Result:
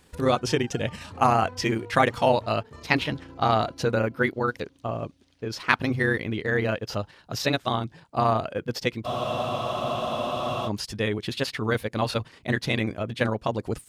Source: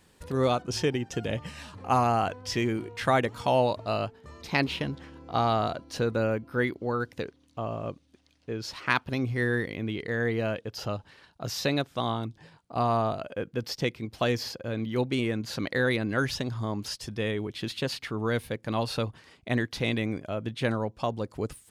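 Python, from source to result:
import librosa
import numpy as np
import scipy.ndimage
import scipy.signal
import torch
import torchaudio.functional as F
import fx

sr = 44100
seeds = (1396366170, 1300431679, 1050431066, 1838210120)

y = fx.stretch_grains(x, sr, factor=0.64, grain_ms=68.0)
y = fx.dynamic_eq(y, sr, hz=1700.0, q=0.74, threshold_db=-37.0, ratio=4.0, max_db=3)
y = fx.spec_freeze(y, sr, seeds[0], at_s=9.09, hold_s=1.59)
y = y * 10.0 ** (4.0 / 20.0)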